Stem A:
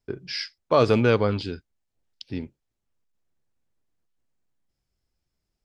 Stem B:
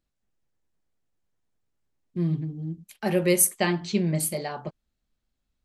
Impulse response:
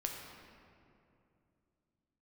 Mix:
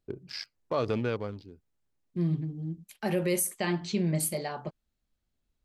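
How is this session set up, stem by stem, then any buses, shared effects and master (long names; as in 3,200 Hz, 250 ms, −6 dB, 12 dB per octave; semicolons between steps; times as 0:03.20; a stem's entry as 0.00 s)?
−5.0 dB, 0.00 s, no send, adaptive Wiener filter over 25 samples; automatic ducking −21 dB, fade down 1.45 s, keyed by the second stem
−2.5 dB, 0.00 s, no send, no processing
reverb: not used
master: brickwall limiter −18 dBFS, peak gain reduction 9.5 dB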